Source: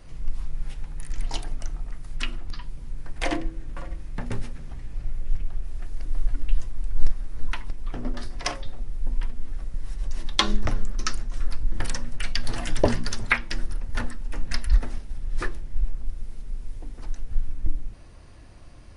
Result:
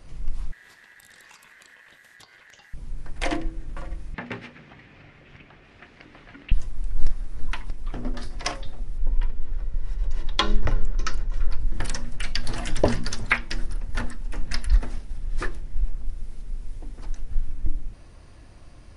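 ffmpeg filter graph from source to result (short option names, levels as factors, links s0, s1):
-filter_complex "[0:a]asettb=1/sr,asplit=3[s0][s1][s2];[s0]atrim=end=0.524[s3];[s1]atrim=start=0.52:end=2.74,asetpts=PTS-STARTPTS,afade=t=in:d=0.004:c=qsin,afade=t=out:st=2.216:d=0.004:c=qsin,highpass=130,aeval=exprs='val(0)*sin(2*PI*1800*n/s)':c=same,acompressor=threshold=0.00562:ratio=10:attack=3.2:release=140:knee=1:detection=peak[s4];[s2]atrim=start=2.736[s5];[s3][s4]acrossfade=d=0.004:c1=hsin:c2=qsin[s6];[s6][s5]acrossfade=d=0.004:c1=qsin:c2=hsin,asettb=1/sr,asplit=3[s7][s8][s9];[s7]atrim=end=4.144[s10];[s8]atrim=start=4.14:end=6.52,asetpts=PTS-STARTPTS,afade=t=in:d=0.004:c=qsin,afade=t=out:st=2.376:d=0.004:c=qsin,highpass=180,lowpass=3700,equalizer=f=2300:w=0.93:g=9[s11];[s9]atrim=start=6.516[s12];[s10][s11]acrossfade=d=0.004:c1=hsin:c2=qsin[s13];[s13][s12]acrossfade=d=0.004:c1=qsin:c2=hsin,asettb=1/sr,asplit=3[s14][s15][s16];[s14]atrim=end=8.984[s17];[s15]atrim=start=8.98:end=11.6,asetpts=PTS-STARTPTS,afade=t=in:d=0.004:c=qsin,afade=t=out:st=2.616:d=0.004:c=qsin,aemphasis=mode=reproduction:type=50fm,aecho=1:1:2.1:0.37,atrim=end_sample=115542[s18];[s16]atrim=start=11.596[s19];[s17][s18]acrossfade=d=0.004:c1=hsin:c2=qsin[s20];[s20][s19]acrossfade=d=0.004:c1=qsin:c2=hsin"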